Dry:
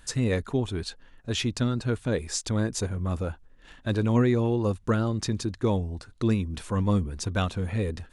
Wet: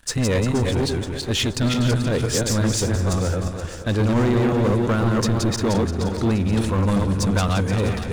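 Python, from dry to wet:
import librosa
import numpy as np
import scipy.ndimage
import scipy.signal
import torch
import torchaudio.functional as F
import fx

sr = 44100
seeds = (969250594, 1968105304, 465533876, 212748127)

y = fx.reverse_delay_fb(x, sr, ms=174, feedback_pct=42, wet_db=-2)
y = fx.leveller(y, sr, passes=3)
y = fx.echo_split(y, sr, split_hz=360.0, low_ms=124, high_ms=475, feedback_pct=52, wet_db=-12.0)
y = y * 10.0 ** (-3.5 / 20.0)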